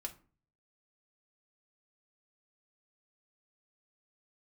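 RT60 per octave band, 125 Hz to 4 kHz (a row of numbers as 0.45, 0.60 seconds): 0.75, 0.55, 0.40, 0.40, 0.30, 0.25 seconds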